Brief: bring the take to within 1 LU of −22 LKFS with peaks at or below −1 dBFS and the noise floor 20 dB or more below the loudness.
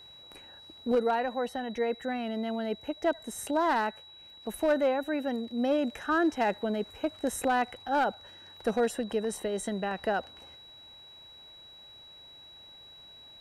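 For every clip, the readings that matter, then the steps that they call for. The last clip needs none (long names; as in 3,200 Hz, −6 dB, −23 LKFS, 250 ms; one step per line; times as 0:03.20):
share of clipped samples 0.5%; peaks flattened at −19.5 dBFS; interfering tone 3,900 Hz; level of the tone −49 dBFS; integrated loudness −30.5 LKFS; sample peak −19.5 dBFS; target loudness −22.0 LKFS
→ clipped peaks rebuilt −19.5 dBFS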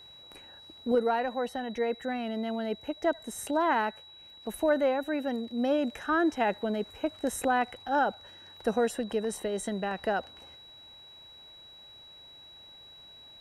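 share of clipped samples 0.0%; interfering tone 3,900 Hz; level of the tone −49 dBFS
→ notch filter 3,900 Hz, Q 30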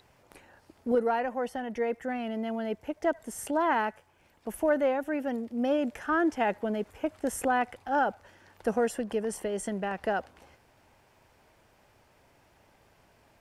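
interfering tone none found; integrated loudness −30.5 LKFS; sample peak −15.0 dBFS; target loudness −22.0 LKFS
→ level +8.5 dB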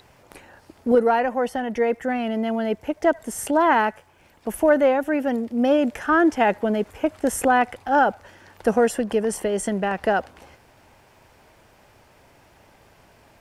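integrated loudness −22.0 LKFS; sample peak −6.5 dBFS; background noise floor −55 dBFS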